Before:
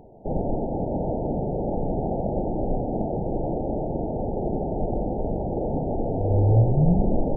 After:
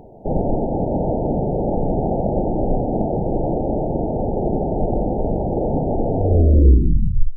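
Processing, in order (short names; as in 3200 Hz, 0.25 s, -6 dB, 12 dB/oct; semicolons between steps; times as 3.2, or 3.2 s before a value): tape stop at the end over 1.16 s; gain +6 dB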